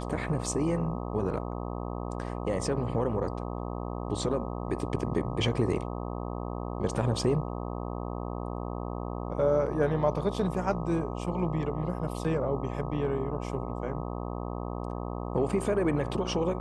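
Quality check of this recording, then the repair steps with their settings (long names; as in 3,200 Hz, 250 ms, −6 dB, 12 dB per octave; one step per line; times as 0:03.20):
mains buzz 60 Hz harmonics 21 −35 dBFS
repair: hum removal 60 Hz, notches 21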